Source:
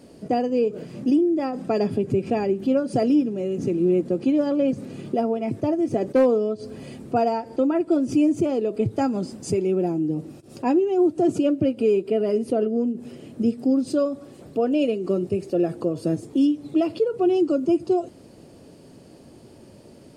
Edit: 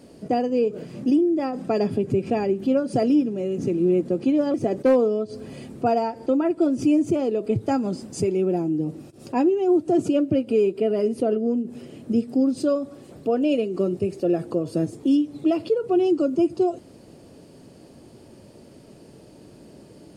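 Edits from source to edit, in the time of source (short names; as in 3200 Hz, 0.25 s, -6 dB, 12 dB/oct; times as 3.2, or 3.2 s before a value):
4.54–5.84 cut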